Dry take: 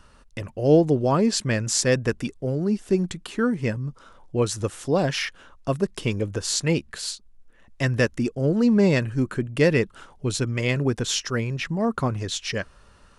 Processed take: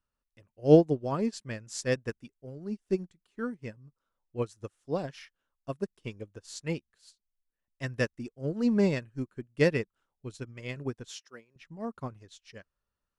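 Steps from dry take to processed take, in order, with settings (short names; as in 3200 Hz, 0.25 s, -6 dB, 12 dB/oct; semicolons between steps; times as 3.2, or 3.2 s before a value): 11.1–11.56 HPF 280 Hz 12 dB/oct; upward expander 2.5:1, over -35 dBFS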